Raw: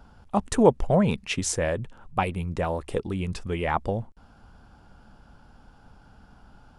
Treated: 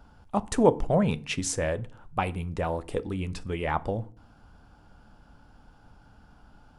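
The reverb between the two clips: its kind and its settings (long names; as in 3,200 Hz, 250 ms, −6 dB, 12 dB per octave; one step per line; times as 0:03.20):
feedback delay network reverb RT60 0.45 s, low-frequency decay 1.55×, high-frequency decay 0.7×, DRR 14 dB
level −2.5 dB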